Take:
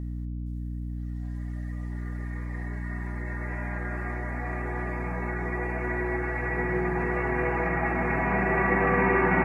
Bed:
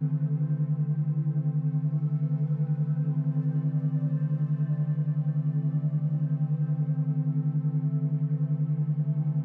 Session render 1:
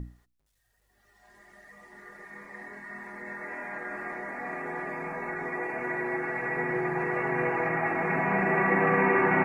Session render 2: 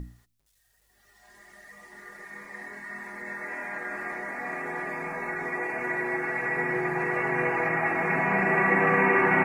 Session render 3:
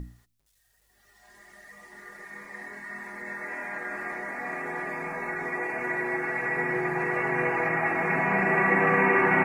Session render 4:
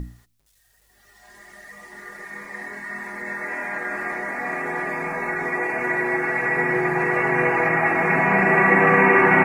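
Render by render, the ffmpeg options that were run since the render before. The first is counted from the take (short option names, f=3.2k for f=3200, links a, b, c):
-af "bandreject=f=60:t=h:w=6,bandreject=f=120:t=h:w=6,bandreject=f=180:t=h:w=6,bandreject=f=240:t=h:w=6,bandreject=f=300:t=h:w=6,bandreject=f=360:t=h:w=6"
-af "highshelf=f=2.3k:g=8.5,bandreject=f=116:t=h:w=4,bandreject=f=232:t=h:w=4"
-af anull
-af "volume=6.5dB"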